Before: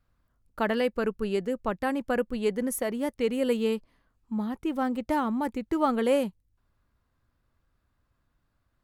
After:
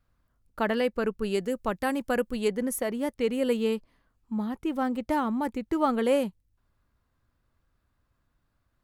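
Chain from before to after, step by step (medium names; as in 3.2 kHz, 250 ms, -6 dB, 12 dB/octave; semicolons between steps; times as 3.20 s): 1.24–2.48 s: treble shelf 4.2 kHz +8.5 dB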